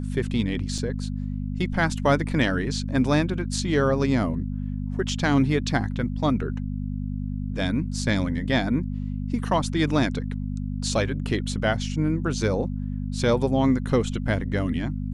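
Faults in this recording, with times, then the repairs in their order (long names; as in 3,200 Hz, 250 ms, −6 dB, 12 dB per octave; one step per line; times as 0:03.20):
mains hum 50 Hz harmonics 5 −29 dBFS
0:00.78: drop-out 3.3 ms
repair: hum removal 50 Hz, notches 5
repair the gap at 0:00.78, 3.3 ms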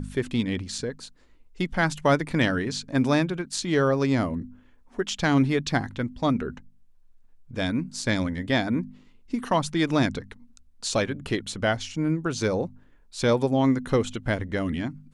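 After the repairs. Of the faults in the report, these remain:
none of them is left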